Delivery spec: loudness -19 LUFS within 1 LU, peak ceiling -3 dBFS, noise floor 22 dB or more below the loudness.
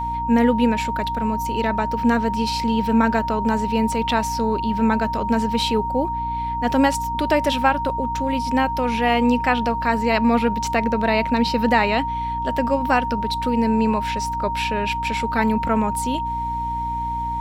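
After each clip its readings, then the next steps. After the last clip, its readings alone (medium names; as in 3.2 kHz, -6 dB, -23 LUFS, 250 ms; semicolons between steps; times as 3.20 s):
hum 60 Hz; highest harmonic 300 Hz; hum level -29 dBFS; steady tone 930 Hz; tone level -23 dBFS; loudness -21.0 LUFS; peak level -4.0 dBFS; loudness target -19.0 LUFS
-> de-hum 60 Hz, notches 5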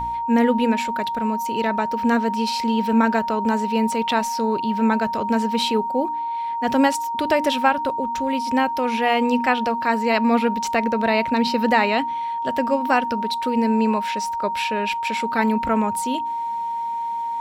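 hum not found; steady tone 930 Hz; tone level -23 dBFS
-> band-stop 930 Hz, Q 30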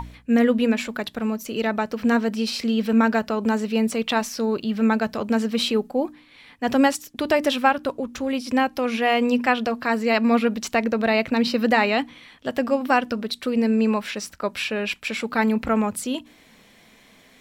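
steady tone not found; loudness -22.5 LUFS; peak level -5.0 dBFS; loudness target -19.0 LUFS
-> trim +3.5 dB; peak limiter -3 dBFS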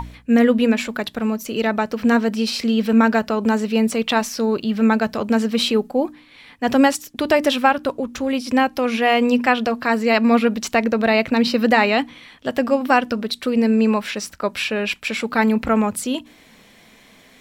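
loudness -19.0 LUFS; peak level -3.0 dBFS; noise floor -50 dBFS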